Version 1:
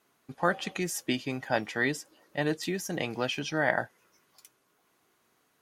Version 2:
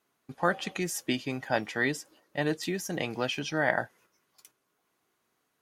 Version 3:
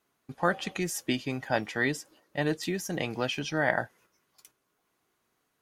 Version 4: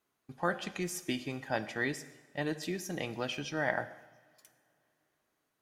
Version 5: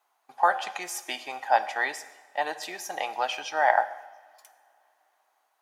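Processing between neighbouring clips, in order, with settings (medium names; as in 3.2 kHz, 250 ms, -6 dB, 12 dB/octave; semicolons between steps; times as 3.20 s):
gate -58 dBFS, range -6 dB
bass shelf 73 Hz +9 dB
reverberation, pre-delay 3 ms, DRR 11.5 dB; trim -5.5 dB
resonant high-pass 800 Hz, resonance Q 4.8; trim +5 dB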